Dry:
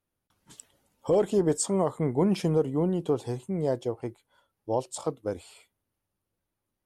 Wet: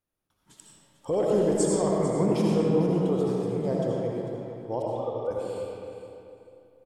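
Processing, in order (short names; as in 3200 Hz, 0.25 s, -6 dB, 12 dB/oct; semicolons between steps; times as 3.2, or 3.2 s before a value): 4.82–5.31 sine-wave speech; feedback echo 0.447 s, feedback 24%, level -12.5 dB; reverb RT60 2.7 s, pre-delay 40 ms, DRR -4 dB; gain -4 dB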